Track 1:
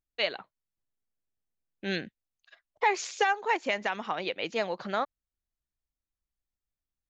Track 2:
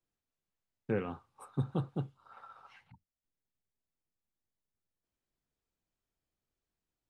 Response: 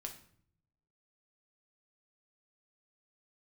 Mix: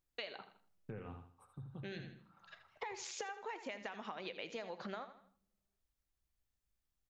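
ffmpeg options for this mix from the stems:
-filter_complex "[0:a]acompressor=threshold=0.0178:ratio=6,volume=0.944,asplit=3[s0][s1][s2];[s1]volume=0.473[s3];[s2]volume=0.266[s4];[1:a]asubboost=boost=6.5:cutoff=130,alimiter=level_in=1.33:limit=0.0631:level=0:latency=1:release=28,volume=0.75,tremolo=f=4.5:d=0.3,volume=0.596,afade=t=out:st=0.73:d=0.8:silence=0.354813,asplit=4[s5][s6][s7][s8];[s6]volume=0.251[s9];[s7]volume=0.447[s10];[s8]apad=whole_len=312935[s11];[s0][s11]sidechaincompress=threshold=0.00224:ratio=8:attack=16:release=1150[s12];[2:a]atrim=start_sample=2205[s13];[s3][s9]amix=inputs=2:normalize=0[s14];[s14][s13]afir=irnorm=-1:irlink=0[s15];[s4][s10]amix=inputs=2:normalize=0,aecho=0:1:80|160|240|320:1|0.28|0.0784|0.022[s16];[s12][s5][s15][s16]amix=inputs=4:normalize=0,acompressor=threshold=0.00562:ratio=2.5"

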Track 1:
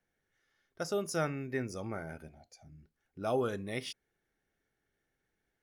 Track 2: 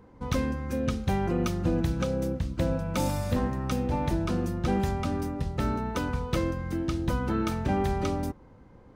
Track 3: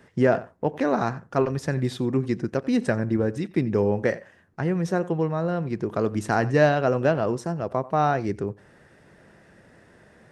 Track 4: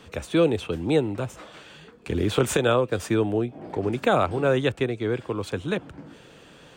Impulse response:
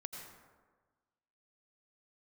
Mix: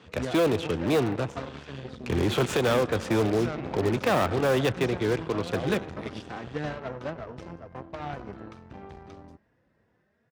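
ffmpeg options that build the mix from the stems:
-filter_complex "[0:a]adelay=2300,volume=0.668[s0];[1:a]adelay=1050,volume=0.188[s1];[2:a]asplit=2[s2][s3];[s3]adelay=3.5,afreqshift=2.7[s4];[s2][s4]amix=inputs=2:normalize=1,volume=0.224,asplit=2[s5][s6];[s6]volume=0.422[s7];[3:a]volume=0.891,asplit=2[s8][s9];[s9]volume=0.282[s10];[4:a]atrim=start_sample=2205[s11];[s7][s10]amix=inputs=2:normalize=0[s12];[s12][s11]afir=irnorm=-1:irlink=0[s13];[s0][s1][s5][s8][s13]amix=inputs=5:normalize=0,lowpass=5000,aeval=exprs='0.112*(cos(1*acos(clip(val(0)/0.112,-1,1)))-cos(1*PI/2))+0.00631*(cos(7*acos(clip(val(0)/0.112,-1,1)))-cos(7*PI/2))+0.0112*(cos(8*acos(clip(val(0)/0.112,-1,1)))-cos(8*PI/2))':c=same,highpass=57"

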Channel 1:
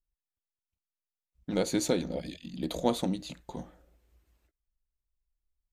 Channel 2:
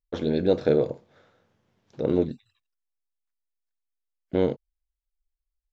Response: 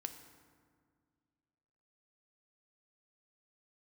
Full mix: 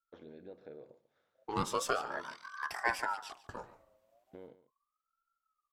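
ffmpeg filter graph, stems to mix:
-filter_complex "[0:a]aeval=exprs='val(0)*sin(2*PI*970*n/s+970*0.4/0.38*sin(2*PI*0.38*n/s))':c=same,volume=0.75,asplit=2[s0][s1];[s1]volume=0.133[s2];[1:a]acrossover=split=2900[s3][s4];[s4]acompressor=threshold=0.00141:ratio=4:attack=1:release=60[s5];[s3][s5]amix=inputs=2:normalize=0,lowshelf=f=240:g=-11,acompressor=threshold=0.0224:ratio=2.5,volume=0.133,asplit=2[s6][s7];[s7]volume=0.158[s8];[s2][s8]amix=inputs=2:normalize=0,aecho=0:1:144:1[s9];[s0][s6][s9]amix=inputs=3:normalize=0"

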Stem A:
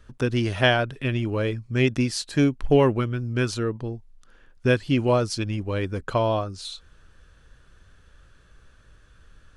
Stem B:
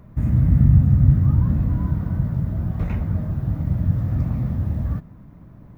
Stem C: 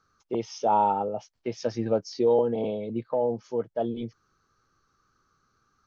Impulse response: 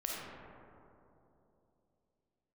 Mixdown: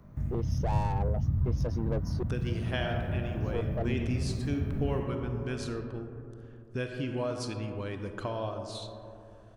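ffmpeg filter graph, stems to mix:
-filter_complex "[0:a]adelay=2100,volume=0.316,asplit=2[s0][s1];[s1]volume=0.376[s2];[1:a]acrossover=split=130|3000[s3][s4][s5];[s4]acompressor=threshold=0.0447:ratio=6[s6];[s3][s6][s5]amix=inputs=3:normalize=0,flanger=delay=20:depth=8:speed=0.6,volume=0.531,asplit=2[s7][s8];[s8]volume=0.422[s9];[2:a]aeval=exprs='(tanh(25.1*val(0)+0.5)-tanh(0.5))/25.1':c=same,equalizer=f=2900:t=o:w=3:g=-11,volume=1.06,asplit=3[s10][s11][s12];[s10]atrim=end=2.23,asetpts=PTS-STARTPTS,afade=t=out:st=2.226:d=0.004:c=hsin[s13];[s11]atrim=start=2.23:end=3.4,asetpts=PTS-STARTPTS,volume=0[s14];[s12]atrim=start=3.4,asetpts=PTS-STARTPTS,afade=t=in:d=0.004:c=hsin[s15];[s13][s14][s15]concat=n=3:v=0:a=1,asplit=2[s16][s17];[s17]apad=whole_len=254712[s18];[s7][s18]sidechaincompress=threshold=0.00282:ratio=8:attack=16:release=117[s19];[s0][s19]amix=inputs=2:normalize=0,acompressor=threshold=0.0158:ratio=6,volume=1[s20];[3:a]atrim=start_sample=2205[s21];[s2][s9]amix=inputs=2:normalize=0[s22];[s22][s21]afir=irnorm=-1:irlink=0[s23];[s16][s20][s23]amix=inputs=3:normalize=0"

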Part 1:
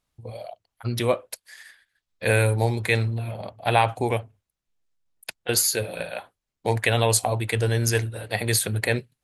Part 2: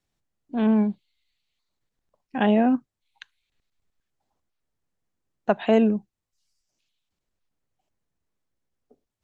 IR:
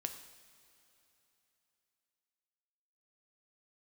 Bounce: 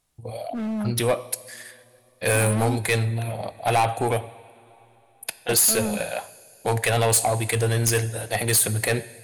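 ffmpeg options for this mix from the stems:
-filter_complex "[0:a]equalizer=f=730:t=o:w=0.5:g=4,volume=0.891,asplit=2[s0][s1];[s1]volume=0.596[s2];[1:a]volume=15.8,asoftclip=hard,volume=0.0631,volume=0.891[s3];[2:a]atrim=start_sample=2205[s4];[s2][s4]afir=irnorm=-1:irlink=0[s5];[s0][s3][s5]amix=inputs=3:normalize=0,equalizer=f=10000:t=o:w=0.97:g=9.5,asoftclip=type=tanh:threshold=0.188"

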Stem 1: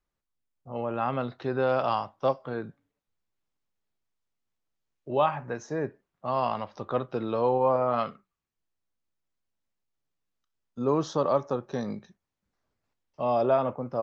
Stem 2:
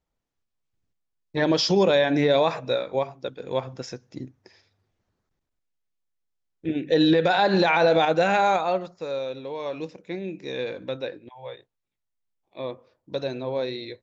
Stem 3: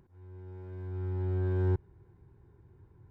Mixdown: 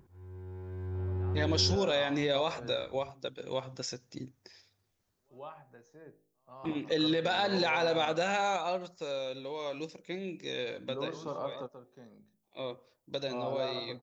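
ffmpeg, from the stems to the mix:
-filter_complex "[0:a]bandreject=f=52.84:t=h:w=4,bandreject=f=105.68:t=h:w=4,bandreject=f=158.52:t=h:w=4,bandreject=f=211.36:t=h:w=4,bandreject=f=264.2:t=h:w=4,bandreject=f=317.04:t=h:w=4,bandreject=f=369.88:t=h:w=4,bandreject=f=422.72:t=h:w=4,bandreject=f=475.56:t=h:w=4,bandreject=f=528.4:t=h:w=4,bandreject=f=581.24:t=h:w=4,bandreject=f=634.08:t=h:w=4,bandreject=f=686.92:t=h:w=4,bandreject=f=739.76:t=h:w=4,bandreject=f=792.6:t=h:w=4,adelay=100,volume=0.266,asplit=2[s0][s1];[s1]volume=0.316[s2];[1:a]crystalizer=i=3:c=0,volume=0.501,asplit=2[s3][s4];[2:a]volume=1.19[s5];[s4]apad=whole_len=622709[s6];[s0][s6]sidechaingate=range=0.0112:threshold=0.00178:ratio=16:detection=peak[s7];[s2]aecho=0:1:135:1[s8];[s7][s3][s5][s8]amix=inputs=4:normalize=0,acompressor=threshold=0.02:ratio=1.5"

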